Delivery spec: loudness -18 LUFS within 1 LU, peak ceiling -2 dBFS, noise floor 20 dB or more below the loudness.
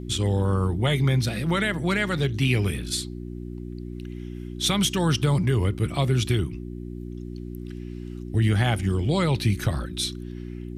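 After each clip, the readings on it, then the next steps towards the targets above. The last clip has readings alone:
hum 60 Hz; highest harmonic 360 Hz; hum level -34 dBFS; loudness -24.0 LUFS; peak level -11.0 dBFS; loudness target -18.0 LUFS
-> de-hum 60 Hz, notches 6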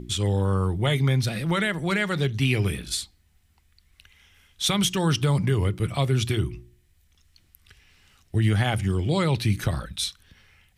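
hum not found; loudness -24.5 LUFS; peak level -11.0 dBFS; loudness target -18.0 LUFS
-> trim +6.5 dB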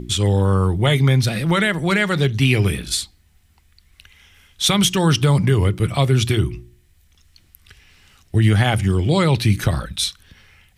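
loudness -18.0 LUFS; peak level -4.5 dBFS; noise floor -56 dBFS

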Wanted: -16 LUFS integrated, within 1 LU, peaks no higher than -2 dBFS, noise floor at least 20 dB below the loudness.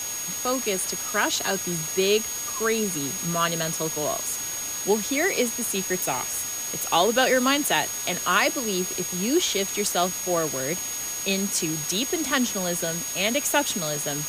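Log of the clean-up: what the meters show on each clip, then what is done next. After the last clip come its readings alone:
steady tone 6.6 kHz; tone level -30 dBFS; noise floor -31 dBFS; noise floor target -44 dBFS; loudness -24.0 LUFS; peak level -7.0 dBFS; loudness target -16.0 LUFS
-> band-stop 6.6 kHz, Q 30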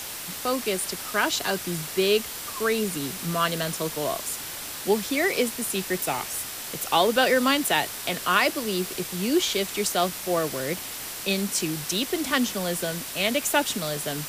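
steady tone not found; noise floor -36 dBFS; noise floor target -46 dBFS
-> noise reduction 10 dB, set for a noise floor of -36 dBFS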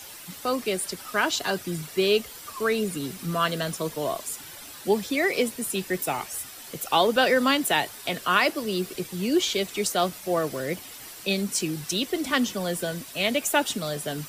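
noise floor -43 dBFS; noise floor target -46 dBFS
-> noise reduction 6 dB, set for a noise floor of -43 dBFS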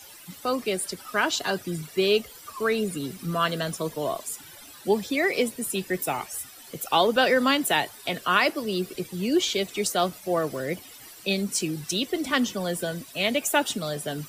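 noise floor -47 dBFS; loudness -26.0 LUFS; peak level -7.5 dBFS; loudness target -16.0 LUFS
-> trim +10 dB; peak limiter -2 dBFS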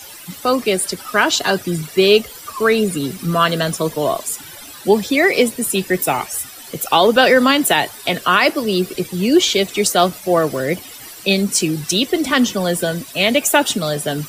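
loudness -16.5 LUFS; peak level -2.0 dBFS; noise floor -37 dBFS

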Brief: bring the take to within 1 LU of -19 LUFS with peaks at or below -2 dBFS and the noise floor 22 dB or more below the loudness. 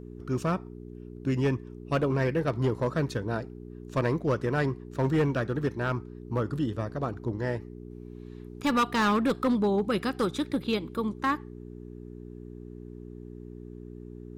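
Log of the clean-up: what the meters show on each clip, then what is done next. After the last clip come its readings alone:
clipped samples 1.2%; clipping level -19.5 dBFS; hum 60 Hz; highest harmonic 420 Hz; hum level -42 dBFS; loudness -29.0 LUFS; peak level -19.5 dBFS; loudness target -19.0 LUFS
-> clip repair -19.5 dBFS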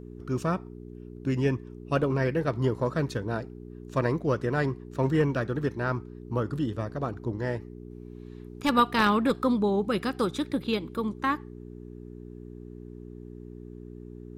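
clipped samples 0.0%; hum 60 Hz; highest harmonic 420 Hz; hum level -42 dBFS
-> de-hum 60 Hz, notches 7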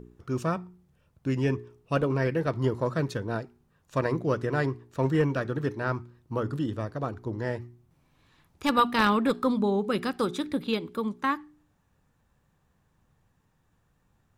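hum not found; loudness -28.5 LUFS; peak level -10.0 dBFS; loudness target -19.0 LUFS
-> trim +9.5 dB; peak limiter -2 dBFS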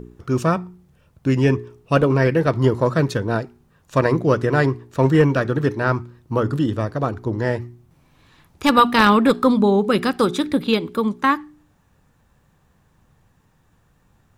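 loudness -19.5 LUFS; peak level -2.0 dBFS; noise floor -61 dBFS

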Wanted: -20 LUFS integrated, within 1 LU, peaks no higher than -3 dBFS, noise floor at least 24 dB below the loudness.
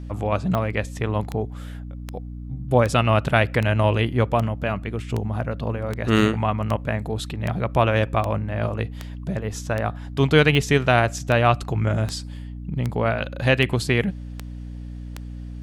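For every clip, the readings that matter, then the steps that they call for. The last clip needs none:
clicks found 20; hum 60 Hz; highest harmonic 300 Hz; hum level -32 dBFS; loudness -22.5 LUFS; peak level -1.5 dBFS; loudness target -20.0 LUFS
-> de-click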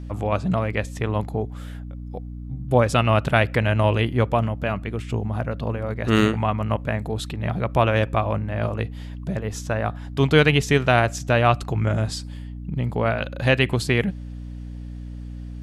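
clicks found 0; hum 60 Hz; highest harmonic 300 Hz; hum level -32 dBFS
-> hum notches 60/120/180/240/300 Hz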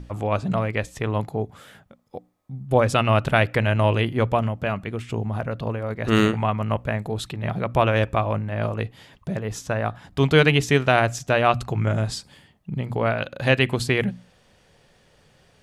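hum not found; loudness -23.0 LUFS; peak level -2.5 dBFS; loudness target -20.0 LUFS
-> trim +3 dB; peak limiter -3 dBFS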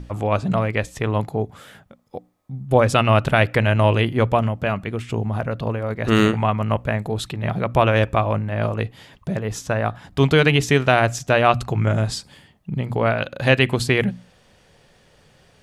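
loudness -20.5 LUFS; peak level -3.0 dBFS; noise floor -56 dBFS

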